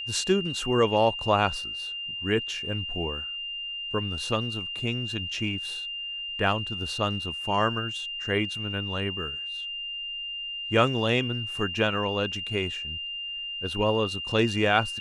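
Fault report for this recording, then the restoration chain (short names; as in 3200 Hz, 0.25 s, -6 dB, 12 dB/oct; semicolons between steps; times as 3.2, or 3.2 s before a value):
tone 2800 Hz -32 dBFS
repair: notch 2800 Hz, Q 30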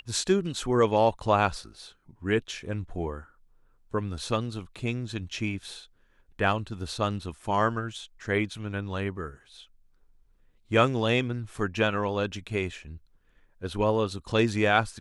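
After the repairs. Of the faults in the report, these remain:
none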